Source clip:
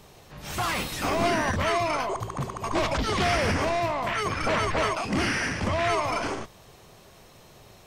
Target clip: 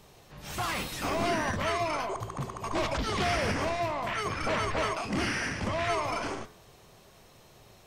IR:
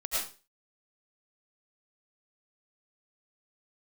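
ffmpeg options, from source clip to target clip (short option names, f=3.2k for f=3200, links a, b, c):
-af "bandreject=f=85.41:t=h:w=4,bandreject=f=170.82:t=h:w=4,bandreject=f=256.23:t=h:w=4,bandreject=f=341.64:t=h:w=4,bandreject=f=427.05:t=h:w=4,bandreject=f=512.46:t=h:w=4,bandreject=f=597.87:t=h:w=4,bandreject=f=683.28:t=h:w=4,bandreject=f=768.69:t=h:w=4,bandreject=f=854.1:t=h:w=4,bandreject=f=939.51:t=h:w=4,bandreject=f=1.02492k:t=h:w=4,bandreject=f=1.11033k:t=h:w=4,bandreject=f=1.19574k:t=h:w=4,bandreject=f=1.28115k:t=h:w=4,bandreject=f=1.36656k:t=h:w=4,bandreject=f=1.45197k:t=h:w=4,bandreject=f=1.53738k:t=h:w=4,bandreject=f=1.62279k:t=h:w=4,bandreject=f=1.7082k:t=h:w=4,bandreject=f=1.79361k:t=h:w=4,bandreject=f=1.87902k:t=h:w=4,bandreject=f=1.96443k:t=h:w=4,bandreject=f=2.04984k:t=h:w=4,bandreject=f=2.13525k:t=h:w=4,bandreject=f=2.22066k:t=h:w=4,bandreject=f=2.30607k:t=h:w=4,bandreject=f=2.39148k:t=h:w=4,bandreject=f=2.47689k:t=h:w=4,volume=-4dB"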